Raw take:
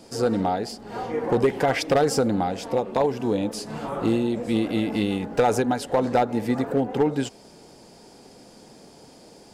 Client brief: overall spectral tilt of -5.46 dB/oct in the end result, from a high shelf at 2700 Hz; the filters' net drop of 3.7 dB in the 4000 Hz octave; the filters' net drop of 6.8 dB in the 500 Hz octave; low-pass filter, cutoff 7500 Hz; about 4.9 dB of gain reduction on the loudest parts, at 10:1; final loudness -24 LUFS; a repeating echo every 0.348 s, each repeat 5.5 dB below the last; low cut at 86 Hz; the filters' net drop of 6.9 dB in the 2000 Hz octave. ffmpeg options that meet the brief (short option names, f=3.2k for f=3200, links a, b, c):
-af "highpass=86,lowpass=7.5k,equalizer=f=500:t=o:g=-8,equalizer=f=2k:t=o:g=-9,highshelf=f=2.7k:g=4.5,equalizer=f=4k:t=o:g=-6,acompressor=threshold=-25dB:ratio=10,aecho=1:1:348|696|1044|1392|1740|2088|2436:0.531|0.281|0.149|0.079|0.0419|0.0222|0.0118,volume=6.5dB"